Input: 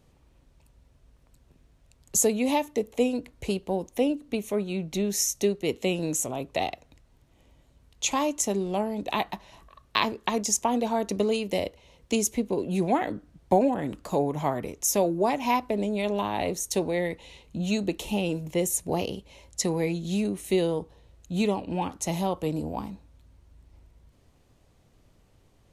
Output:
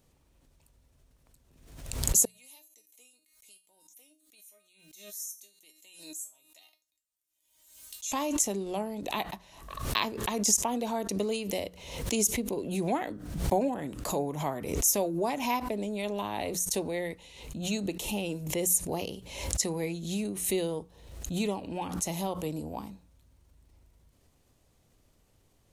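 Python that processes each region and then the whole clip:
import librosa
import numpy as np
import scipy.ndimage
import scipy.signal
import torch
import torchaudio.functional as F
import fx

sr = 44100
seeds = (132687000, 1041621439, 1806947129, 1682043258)

y = fx.chain(x, sr, fx.pre_emphasis(coefficient=0.97),
    fx.comb_fb(f0_hz=310.0, decay_s=0.27, harmonics='all', damping=0.0, mix_pct=90), at=(2.25, 8.12))
y = fx.high_shelf(y, sr, hz=6000.0, db=10.5)
y = fx.hum_notches(y, sr, base_hz=60, count=3)
y = fx.pre_swell(y, sr, db_per_s=64.0)
y = y * librosa.db_to_amplitude(-6.0)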